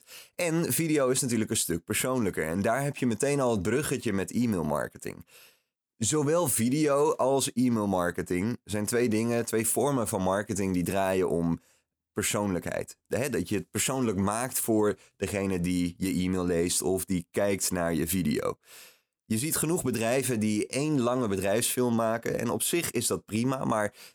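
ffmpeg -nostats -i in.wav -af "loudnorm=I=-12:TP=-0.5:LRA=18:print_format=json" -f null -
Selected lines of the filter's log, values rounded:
"input_i" : "-27.9",
"input_tp" : "-13.0",
"input_lra" : "2.4",
"input_thresh" : "-38.2",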